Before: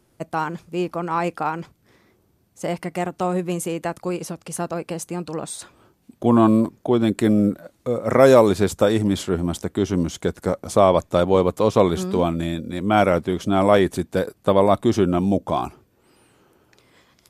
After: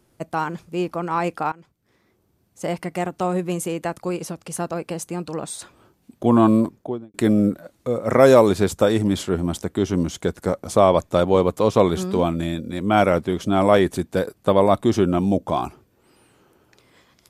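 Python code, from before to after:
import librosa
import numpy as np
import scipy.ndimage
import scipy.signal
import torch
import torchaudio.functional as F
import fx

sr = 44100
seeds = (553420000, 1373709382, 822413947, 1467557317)

y = fx.studio_fade_out(x, sr, start_s=6.62, length_s=0.52)
y = fx.edit(y, sr, fx.fade_in_from(start_s=1.52, length_s=1.15, floor_db=-20.5), tone=tone)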